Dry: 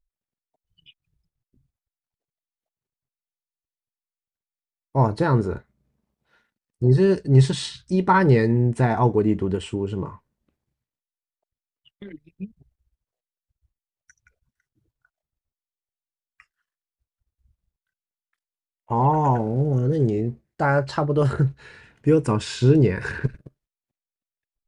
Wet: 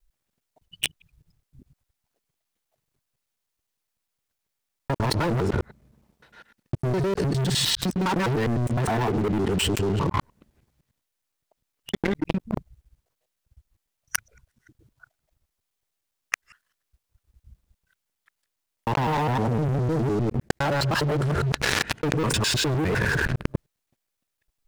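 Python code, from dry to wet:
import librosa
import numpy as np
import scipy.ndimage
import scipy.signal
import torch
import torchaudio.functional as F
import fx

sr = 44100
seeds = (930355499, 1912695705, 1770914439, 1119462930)

y = fx.local_reverse(x, sr, ms=102.0)
y = fx.leveller(y, sr, passes=5)
y = fx.env_flatten(y, sr, amount_pct=100)
y = y * librosa.db_to_amplitude(-17.5)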